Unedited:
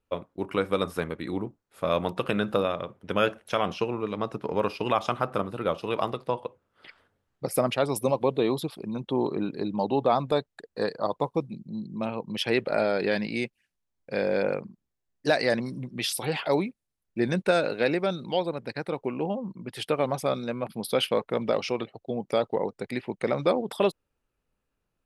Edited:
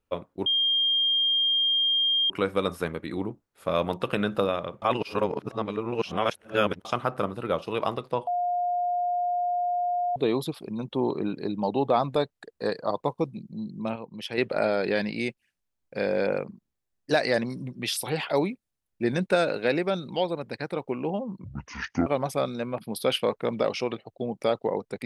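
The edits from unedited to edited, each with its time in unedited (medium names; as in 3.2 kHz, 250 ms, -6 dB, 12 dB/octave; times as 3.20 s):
0.46 s: add tone 3.21 kHz -20.5 dBFS 1.84 s
2.98–5.01 s: reverse
6.43–8.32 s: bleep 710 Hz -23.5 dBFS
12.12–12.54 s: gain -6.5 dB
19.60–19.95 s: speed 56%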